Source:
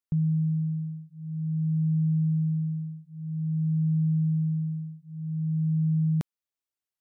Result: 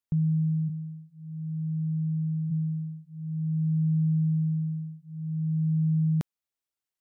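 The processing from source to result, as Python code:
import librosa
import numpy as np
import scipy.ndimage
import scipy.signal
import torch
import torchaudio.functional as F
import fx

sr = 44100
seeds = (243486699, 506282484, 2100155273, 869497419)

y = fx.cheby1_highpass(x, sr, hz=170.0, order=4, at=(0.68, 2.5), fade=0.02)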